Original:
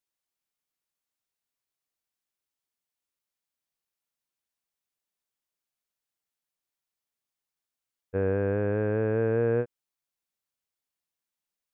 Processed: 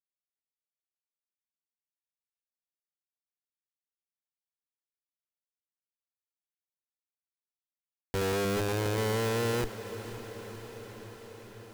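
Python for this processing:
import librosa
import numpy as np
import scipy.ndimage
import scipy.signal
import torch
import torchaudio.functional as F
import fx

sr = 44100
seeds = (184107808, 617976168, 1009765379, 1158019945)

y = fx.hum_notches(x, sr, base_hz=50, count=3, at=(8.17, 9.26))
y = fx.schmitt(y, sr, flips_db=-32.5)
y = fx.echo_diffused(y, sr, ms=529, feedback_pct=72, wet_db=-13)
y = F.gain(torch.from_numpy(y), 6.0).numpy()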